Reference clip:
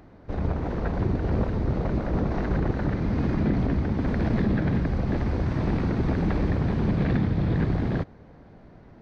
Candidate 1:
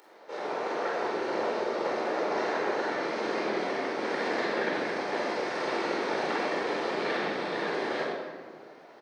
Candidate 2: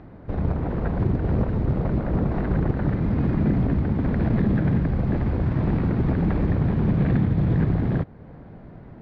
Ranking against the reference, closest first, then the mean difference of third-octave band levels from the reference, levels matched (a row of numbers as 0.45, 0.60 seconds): 2, 1; 3.0, 11.5 decibels